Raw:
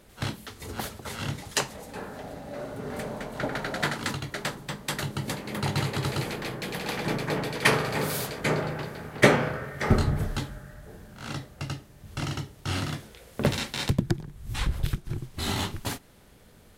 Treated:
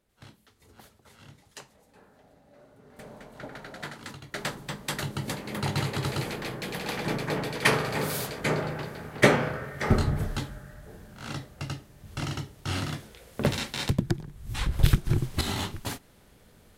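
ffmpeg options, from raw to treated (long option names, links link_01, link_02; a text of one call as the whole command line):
ffmpeg -i in.wav -af "asetnsamples=nb_out_samples=441:pad=0,asendcmd='2.99 volume volume -11dB;4.34 volume volume -1dB;14.79 volume volume 8dB;15.41 volume volume -2dB',volume=-19dB" out.wav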